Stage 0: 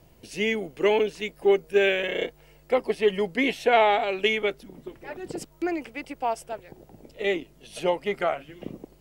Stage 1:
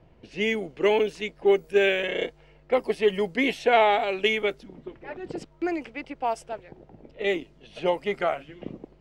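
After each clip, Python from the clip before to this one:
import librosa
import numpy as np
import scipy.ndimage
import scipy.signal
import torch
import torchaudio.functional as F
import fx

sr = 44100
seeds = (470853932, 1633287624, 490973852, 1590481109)

y = fx.env_lowpass(x, sr, base_hz=2400.0, full_db=-20.5)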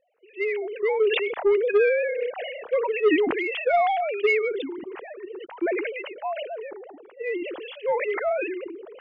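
y = fx.sine_speech(x, sr)
y = 10.0 ** (-13.5 / 20.0) * np.tanh(y / 10.0 ** (-13.5 / 20.0))
y = fx.sustainer(y, sr, db_per_s=32.0)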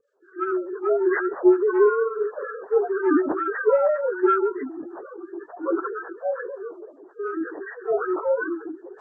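y = fx.partial_stretch(x, sr, pct=78)
y = fx.harmonic_tremolo(y, sr, hz=5.4, depth_pct=70, crossover_hz=1000.0)
y = F.gain(torch.from_numpy(y), 6.0).numpy()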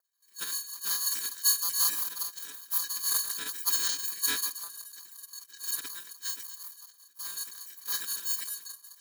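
y = fx.bit_reversed(x, sr, seeds[0], block=256)
y = fx.band_shelf(y, sr, hz=1400.0, db=-9.5, octaves=1.2)
y = y * np.sin(2.0 * np.pi * 1100.0 * np.arange(len(y)) / sr)
y = F.gain(torch.from_numpy(y), -6.5).numpy()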